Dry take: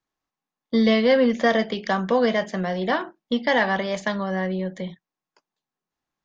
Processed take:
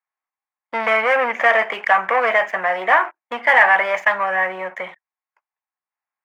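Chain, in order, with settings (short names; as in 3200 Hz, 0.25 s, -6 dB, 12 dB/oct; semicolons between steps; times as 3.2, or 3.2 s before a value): sample leveller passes 3; resonant high-pass 840 Hz, resonance Q 1.7; resonant high shelf 3000 Hz -11 dB, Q 3; gain -2.5 dB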